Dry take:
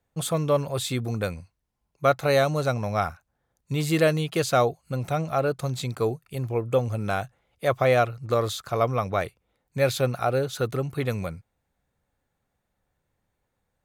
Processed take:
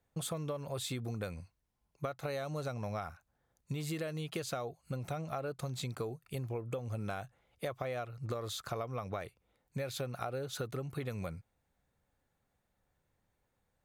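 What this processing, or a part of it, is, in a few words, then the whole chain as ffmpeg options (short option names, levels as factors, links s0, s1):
serial compression, leveller first: -af "acompressor=threshold=0.0794:ratio=3,acompressor=threshold=0.0224:ratio=6,volume=0.75"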